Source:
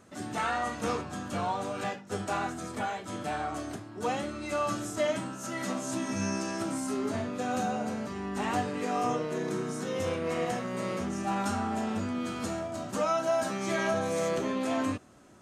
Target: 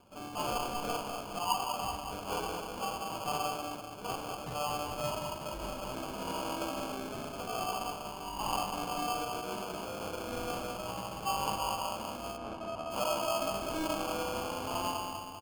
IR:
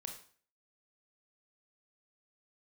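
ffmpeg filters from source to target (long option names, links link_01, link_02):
-filter_complex "[0:a]aphaser=in_gain=1:out_gain=1:delay=1.2:decay=0.41:speed=0.31:type=triangular,lowshelf=frequency=600:width_type=q:width=1.5:gain=-6.5,asplit=2[link_01][link_02];[link_02]aecho=0:1:195|390|585|780|975|1170|1365:0.562|0.292|0.152|0.0791|0.0411|0.0214|0.0111[link_03];[link_01][link_03]amix=inputs=2:normalize=0[link_04];[1:a]atrim=start_sample=2205[link_05];[link_04][link_05]afir=irnorm=-1:irlink=0,acrossover=split=250[link_06][link_07];[link_06]acompressor=threshold=-54dB:ratio=6[link_08];[link_07]acrusher=samples=23:mix=1:aa=0.000001[link_09];[link_08][link_09]amix=inputs=2:normalize=0,asplit=3[link_10][link_11][link_12];[link_10]afade=type=out:start_time=12.36:duration=0.02[link_13];[link_11]aemphasis=mode=reproduction:type=75kf,afade=type=in:start_time=12.36:duration=0.02,afade=type=out:start_time=12.9:duration=0.02[link_14];[link_12]afade=type=in:start_time=12.9:duration=0.02[link_15];[link_13][link_14][link_15]amix=inputs=3:normalize=0"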